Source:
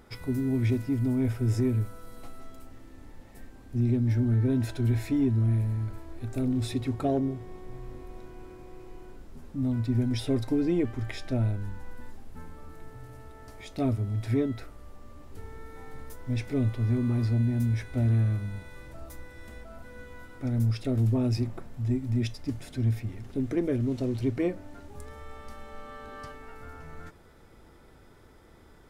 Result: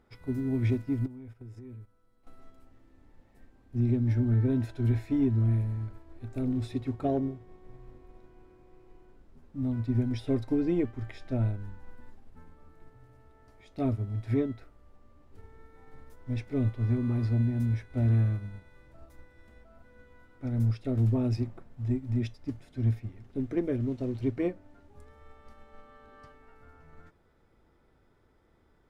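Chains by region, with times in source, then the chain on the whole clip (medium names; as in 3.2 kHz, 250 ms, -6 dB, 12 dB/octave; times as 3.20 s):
1.06–2.27 s: gate -31 dBFS, range -13 dB + compression 16:1, threshold -34 dBFS + band-stop 640 Hz, Q 14
whole clip: treble shelf 5.3 kHz -10.5 dB; upward expansion 1.5:1, over -43 dBFS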